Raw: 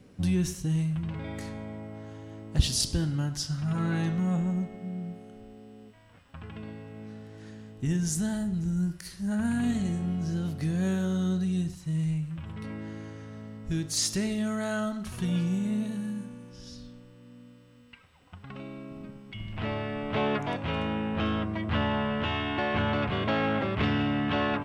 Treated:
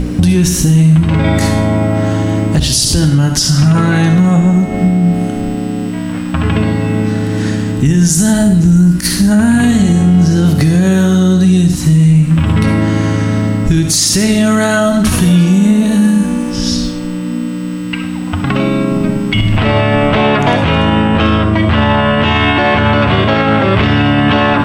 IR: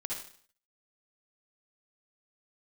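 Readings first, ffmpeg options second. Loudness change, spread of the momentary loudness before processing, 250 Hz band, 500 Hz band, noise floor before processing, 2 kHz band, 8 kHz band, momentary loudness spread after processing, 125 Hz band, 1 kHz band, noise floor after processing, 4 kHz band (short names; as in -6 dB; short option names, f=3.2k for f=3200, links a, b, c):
+18.5 dB, 16 LU, +20.0 dB, +19.0 dB, -54 dBFS, +19.0 dB, +19.5 dB, 7 LU, +20.5 dB, +19.0 dB, -19 dBFS, +18.5 dB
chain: -filter_complex "[0:a]aeval=exprs='val(0)+0.01*(sin(2*PI*60*n/s)+sin(2*PI*2*60*n/s)/2+sin(2*PI*3*60*n/s)/3+sin(2*PI*4*60*n/s)/4+sin(2*PI*5*60*n/s)/5)':c=same,acompressor=threshold=-35dB:ratio=6,bandreject=f=60:t=h:w=6,bandreject=f=120:t=h:w=6,asplit=2[a][b];[1:a]atrim=start_sample=2205,highshelf=f=5.7k:g=8.5[c];[b][c]afir=irnorm=-1:irlink=0,volume=-8dB[d];[a][d]amix=inputs=2:normalize=0,alimiter=level_in=28.5dB:limit=-1dB:release=50:level=0:latency=1,volume=-1dB"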